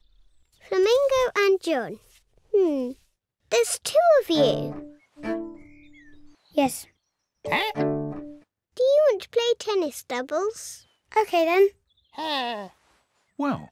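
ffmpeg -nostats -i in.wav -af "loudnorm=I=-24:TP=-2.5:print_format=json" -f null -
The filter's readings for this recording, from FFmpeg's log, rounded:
"input_i" : "-23.9",
"input_tp" : "-9.1",
"input_lra" : "2.5",
"input_thresh" : "-35.4",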